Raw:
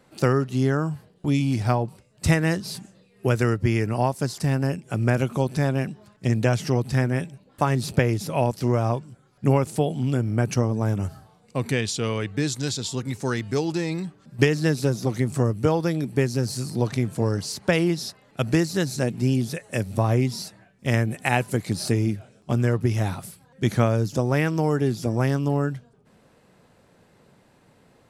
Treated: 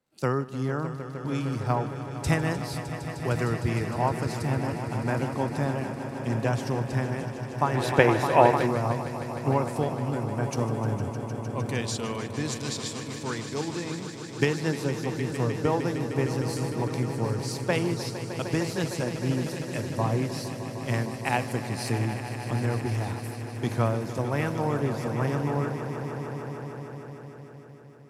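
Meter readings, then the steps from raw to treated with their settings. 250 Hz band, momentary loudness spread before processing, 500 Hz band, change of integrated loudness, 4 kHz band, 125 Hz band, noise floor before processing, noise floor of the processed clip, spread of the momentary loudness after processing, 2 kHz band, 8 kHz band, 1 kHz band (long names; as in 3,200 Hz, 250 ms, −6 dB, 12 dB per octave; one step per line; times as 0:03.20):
−5.0 dB, 7 LU, −2.5 dB, −4.0 dB, −4.0 dB, −5.0 dB, −59 dBFS, −40 dBFS, 8 LU, −2.5 dB, −4.0 dB, +1.0 dB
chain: echo that builds up and dies away 153 ms, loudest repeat 5, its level −11 dB
dynamic equaliser 960 Hz, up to +6 dB, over −42 dBFS, Q 2.1
gain on a spectral selection 0:07.75–0:08.67, 270–4,100 Hz +7 dB
surface crackle 150 per second −48 dBFS
multiband upward and downward expander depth 40%
level −7 dB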